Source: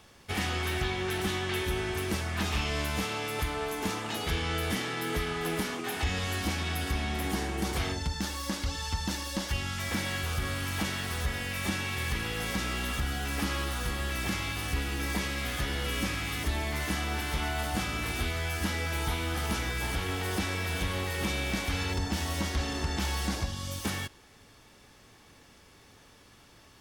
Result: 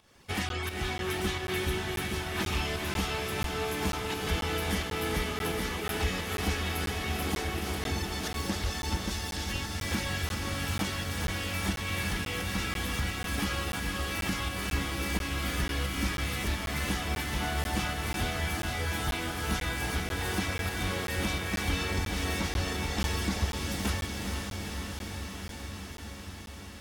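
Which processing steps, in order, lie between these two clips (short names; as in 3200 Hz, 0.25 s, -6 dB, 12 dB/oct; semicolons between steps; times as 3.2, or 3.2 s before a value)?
reverb removal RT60 0.7 s; 7.74–8.41 negative-ratio compressor -36 dBFS, ratio -1; 9.1–9.55 elliptic high-pass 1600 Hz; pump 87 bpm, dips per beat 1, -12 dB, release 0.283 s; diffused feedback echo 0.466 s, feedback 79%, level -4.5 dB; crackling interface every 0.49 s, samples 512, zero, from 0.49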